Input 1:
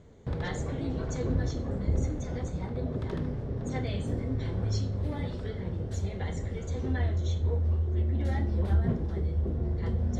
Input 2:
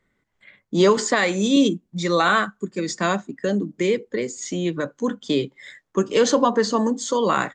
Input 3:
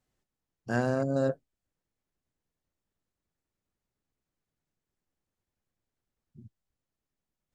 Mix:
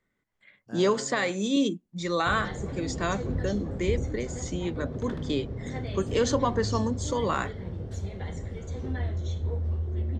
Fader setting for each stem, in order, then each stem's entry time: -2.0, -7.5, -14.0 dB; 2.00, 0.00, 0.00 s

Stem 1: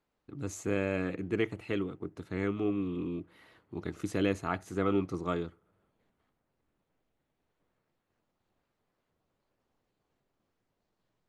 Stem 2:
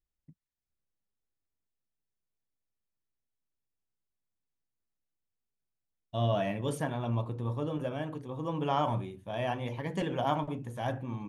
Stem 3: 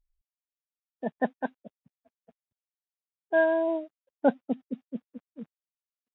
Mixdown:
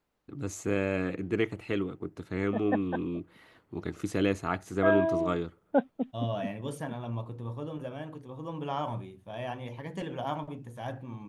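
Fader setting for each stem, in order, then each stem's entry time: +2.0, -4.0, -2.5 dB; 0.00, 0.00, 1.50 s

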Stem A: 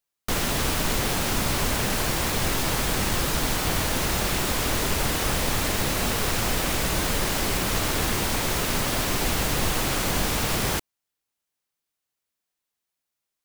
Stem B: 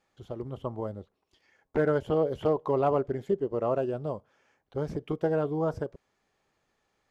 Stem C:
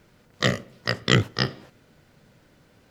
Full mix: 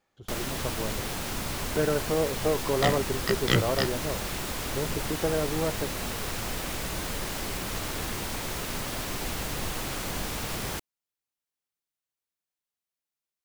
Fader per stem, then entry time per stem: -8.0, -1.0, -5.0 dB; 0.00, 0.00, 2.40 s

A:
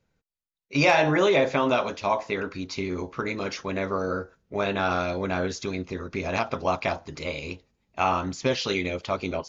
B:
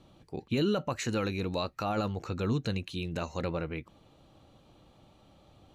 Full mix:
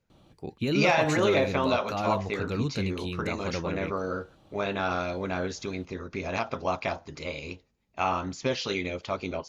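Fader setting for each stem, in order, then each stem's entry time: -3.5, +0.5 dB; 0.00, 0.10 s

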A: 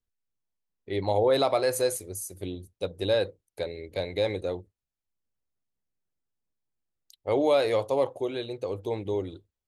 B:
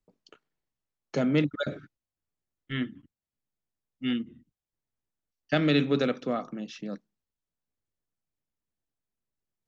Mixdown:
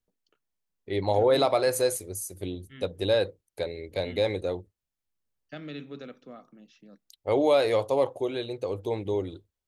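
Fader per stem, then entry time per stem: +1.0, -16.0 dB; 0.00, 0.00 s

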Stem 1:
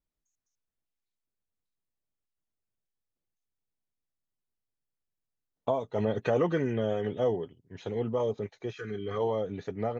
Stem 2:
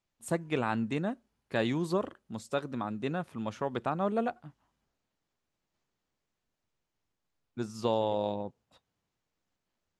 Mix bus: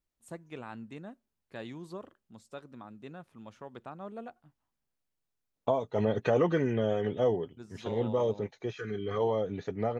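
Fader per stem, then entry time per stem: +0.5, -12.5 dB; 0.00, 0.00 s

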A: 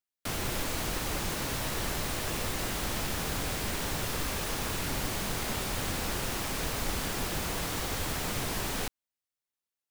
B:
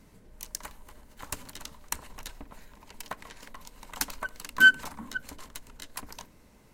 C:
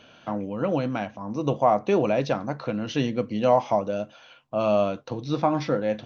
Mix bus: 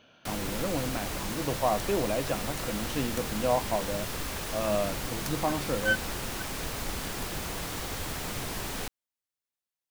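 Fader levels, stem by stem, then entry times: -2.0, -10.5, -7.0 dB; 0.00, 1.25, 0.00 s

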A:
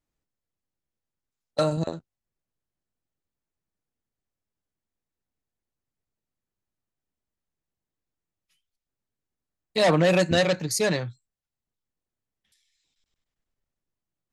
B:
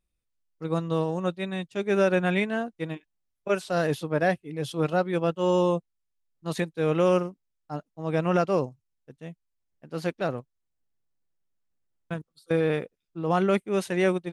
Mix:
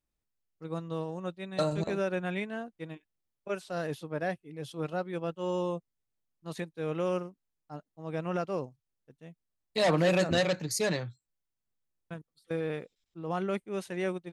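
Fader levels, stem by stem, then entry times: -5.5, -9.0 dB; 0.00, 0.00 s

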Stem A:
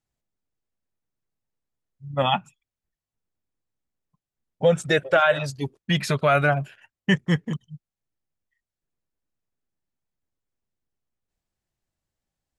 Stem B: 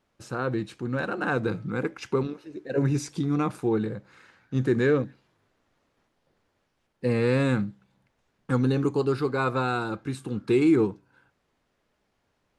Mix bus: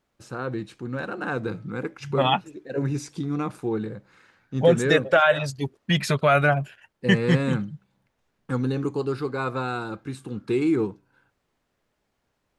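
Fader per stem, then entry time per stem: +0.5, -2.0 dB; 0.00, 0.00 s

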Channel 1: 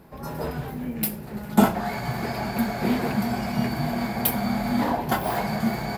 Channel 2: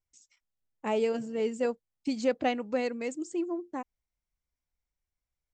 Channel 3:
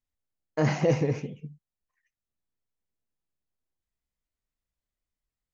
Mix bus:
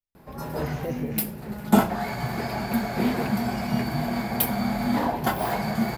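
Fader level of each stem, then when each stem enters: -0.5 dB, off, -9.0 dB; 0.15 s, off, 0.00 s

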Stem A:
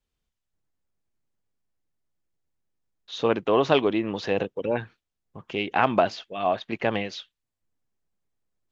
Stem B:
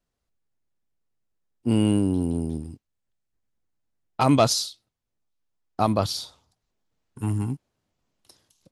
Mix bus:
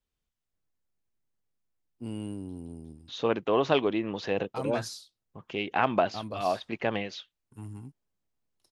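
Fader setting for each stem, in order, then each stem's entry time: -4.0, -16.0 dB; 0.00, 0.35 s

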